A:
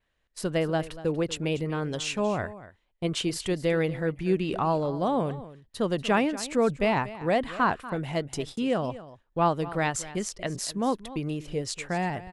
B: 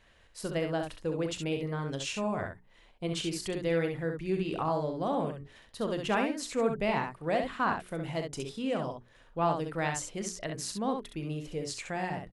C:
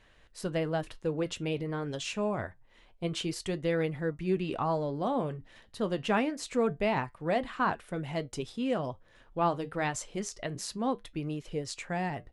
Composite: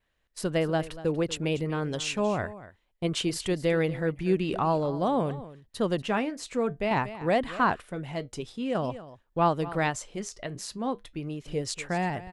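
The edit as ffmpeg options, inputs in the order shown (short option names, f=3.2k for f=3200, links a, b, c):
-filter_complex "[2:a]asplit=3[a][b][c];[0:a]asplit=4[d][e][f][g];[d]atrim=end=6.022[h];[a]atrim=start=6.018:end=6.912[i];[e]atrim=start=6.908:end=7.822[j];[b]atrim=start=7.818:end=8.752[k];[f]atrim=start=8.748:end=9.942[l];[c]atrim=start=9.938:end=11.462[m];[g]atrim=start=11.458[n];[h][i]acrossfade=d=0.004:c1=hsin:c2=hsin[o];[o][j]acrossfade=d=0.004:c1=hsin:c2=hsin[p];[p][k]acrossfade=d=0.004:c1=hsin:c2=hsin[q];[q][l]acrossfade=d=0.004:c1=hsin:c2=hsin[r];[r][m]acrossfade=d=0.004:c1=hsin:c2=hsin[s];[s][n]acrossfade=d=0.004:c1=hsin:c2=hsin"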